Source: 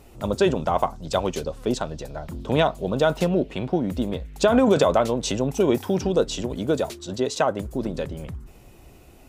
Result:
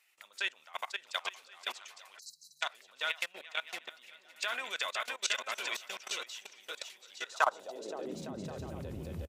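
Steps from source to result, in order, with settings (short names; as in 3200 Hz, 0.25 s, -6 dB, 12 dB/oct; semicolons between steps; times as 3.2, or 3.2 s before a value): on a send: bouncing-ball echo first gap 0.52 s, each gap 0.65×, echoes 5; on the sum: spectral delete 2.19–2.62, 210–3900 Hz; level quantiser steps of 20 dB; high-pass sweep 2000 Hz -> 78 Hz, 7.18–8.68; gain -3 dB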